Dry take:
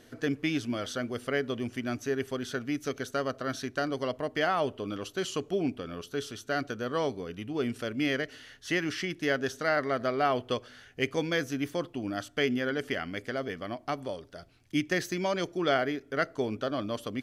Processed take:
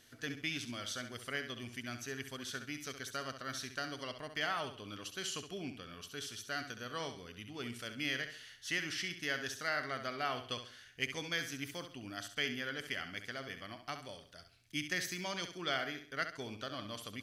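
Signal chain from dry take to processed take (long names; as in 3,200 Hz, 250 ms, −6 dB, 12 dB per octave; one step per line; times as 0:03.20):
guitar amp tone stack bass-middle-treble 5-5-5
flutter between parallel walls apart 11.5 metres, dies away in 0.44 s
level +5 dB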